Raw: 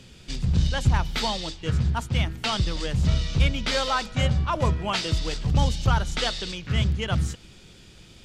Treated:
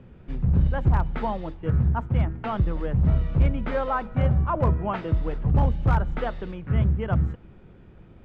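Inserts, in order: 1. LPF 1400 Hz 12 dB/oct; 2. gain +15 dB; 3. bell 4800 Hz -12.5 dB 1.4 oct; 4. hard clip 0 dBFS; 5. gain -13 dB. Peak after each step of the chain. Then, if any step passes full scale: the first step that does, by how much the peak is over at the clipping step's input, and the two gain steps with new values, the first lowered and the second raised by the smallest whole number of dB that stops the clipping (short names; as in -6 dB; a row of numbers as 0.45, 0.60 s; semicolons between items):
-8.0, +7.0, +7.0, 0.0, -13.0 dBFS; step 2, 7.0 dB; step 2 +8 dB, step 5 -6 dB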